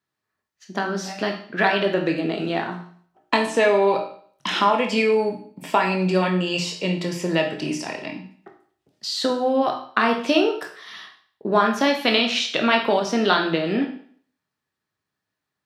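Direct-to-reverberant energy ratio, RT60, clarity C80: 2.0 dB, 0.50 s, 11.5 dB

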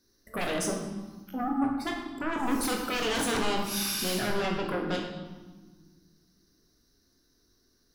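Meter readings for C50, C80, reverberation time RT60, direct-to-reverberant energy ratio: 4.5 dB, 6.5 dB, 1.4 s, 1.5 dB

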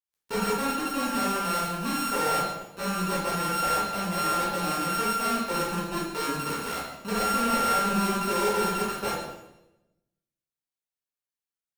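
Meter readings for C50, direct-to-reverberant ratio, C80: 1.5 dB, -6.5 dB, 4.5 dB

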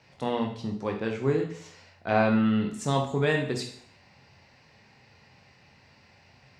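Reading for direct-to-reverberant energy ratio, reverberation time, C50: 1.5 dB, 0.60 s, 7.5 dB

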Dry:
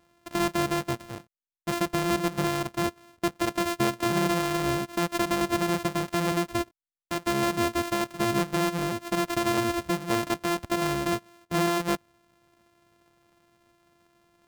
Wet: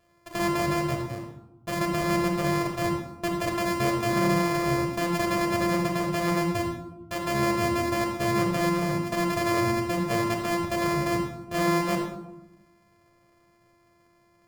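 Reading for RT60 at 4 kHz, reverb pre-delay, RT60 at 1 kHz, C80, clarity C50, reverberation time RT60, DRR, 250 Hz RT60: 0.55 s, 9 ms, 0.90 s, 7.5 dB, 4.0 dB, 0.95 s, 0.0 dB, 1.3 s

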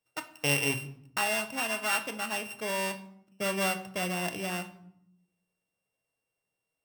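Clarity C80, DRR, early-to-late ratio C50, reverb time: 17.0 dB, 7.0 dB, 13.5 dB, 0.75 s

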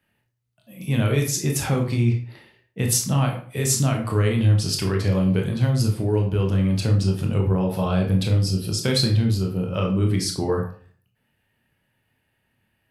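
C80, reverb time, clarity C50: 12.0 dB, 0.45 s, 7.5 dB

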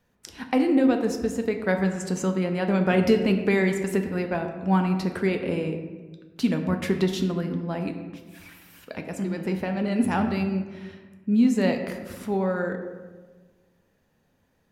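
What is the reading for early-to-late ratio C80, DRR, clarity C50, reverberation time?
9.0 dB, 4.5 dB, 7.5 dB, 1.3 s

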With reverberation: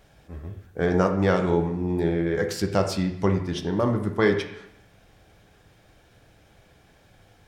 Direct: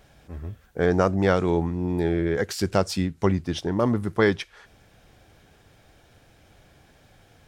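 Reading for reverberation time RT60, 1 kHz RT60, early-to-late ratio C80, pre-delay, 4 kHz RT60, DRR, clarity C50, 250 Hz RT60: 0.75 s, 0.75 s, 10.5 dB, 6 ms, 0.70 s, 4.0 dB, 8.5 dB, 0.80 s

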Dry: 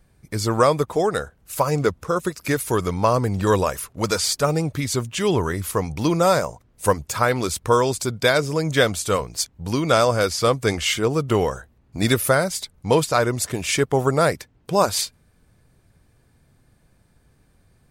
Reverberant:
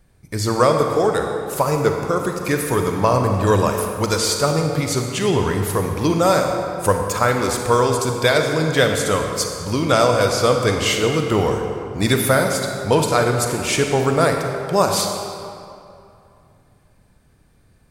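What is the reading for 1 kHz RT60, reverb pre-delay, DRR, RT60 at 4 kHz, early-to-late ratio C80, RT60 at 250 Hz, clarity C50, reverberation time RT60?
2.6 s, 32 ms, 3.0 dB, 1.7 s, 4.5 dB, 2.5 s, 3.5 dB, 2.6 s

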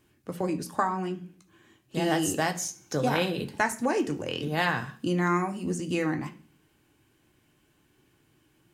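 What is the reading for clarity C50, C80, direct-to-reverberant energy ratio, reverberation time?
15.0 dB, 19.5 dB, 4.0 dB, 0.40 s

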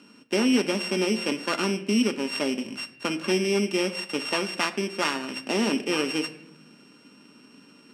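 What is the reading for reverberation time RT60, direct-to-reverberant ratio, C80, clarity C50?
0.75 s, 5.5 dB, 17.0 dB, 14.5 dB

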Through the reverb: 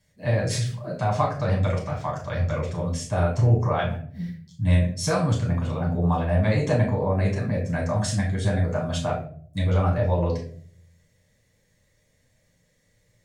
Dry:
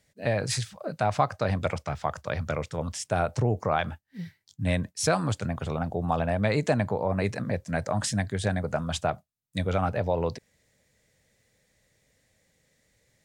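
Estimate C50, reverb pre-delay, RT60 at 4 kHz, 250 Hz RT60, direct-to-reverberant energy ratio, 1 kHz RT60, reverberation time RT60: 6.5 dB, 6 ms, 0.35 s, 0.75 s, -3.0 dB, 0.45 s, 0.50 s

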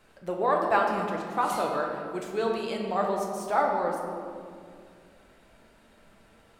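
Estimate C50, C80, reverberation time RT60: 2.5 dB, 4.0 dB, 2.2 s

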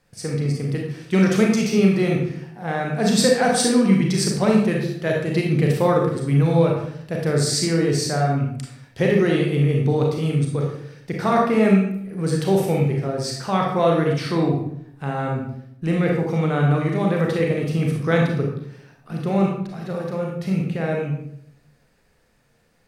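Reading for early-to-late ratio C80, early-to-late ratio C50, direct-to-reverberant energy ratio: 6.5 dB, 2.5 dB, -1.0 dB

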